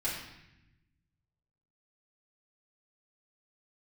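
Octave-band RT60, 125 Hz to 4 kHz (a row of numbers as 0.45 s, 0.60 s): 1.9 s, 1.5 s, 0.85 s, 0.85 s, 1.0 s, 0.85 s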